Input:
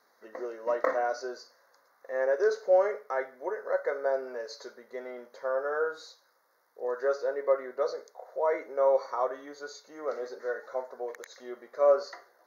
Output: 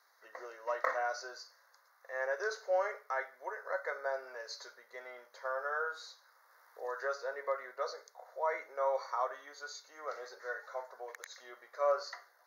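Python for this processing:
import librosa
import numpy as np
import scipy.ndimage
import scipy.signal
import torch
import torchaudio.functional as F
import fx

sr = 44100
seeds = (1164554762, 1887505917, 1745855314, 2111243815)

y = scipy.signal.sosfilt(scipy.signal.butter(2, 930.0, 'highpass', fs=sr, output='sos'), x)
y = fx.band_squash(y, sr, depth_pct=40, at=(5.45, 7.72))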